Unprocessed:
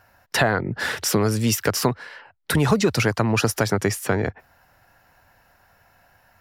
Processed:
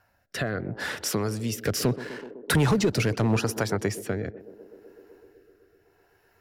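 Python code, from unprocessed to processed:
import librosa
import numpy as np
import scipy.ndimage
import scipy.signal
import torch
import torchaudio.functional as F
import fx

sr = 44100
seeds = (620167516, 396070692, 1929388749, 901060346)

y = fx.leveller(x, sr, passes=2, at=(1.63, 3.37))
y = fx.echo_banded(y, sr, ms=126, feedback_pct=84, hz=380.0, wet_db=-14)
y = fx.rotary(y, sr, hz=0.75)
y = y * librosa.db_to_amplitude(-5.5)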